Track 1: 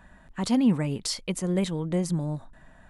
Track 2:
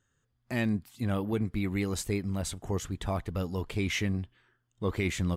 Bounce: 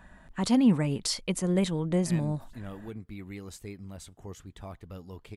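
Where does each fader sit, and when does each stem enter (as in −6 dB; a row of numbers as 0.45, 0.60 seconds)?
0.0, −11.0 decibels; 0.00, 1.55 seconds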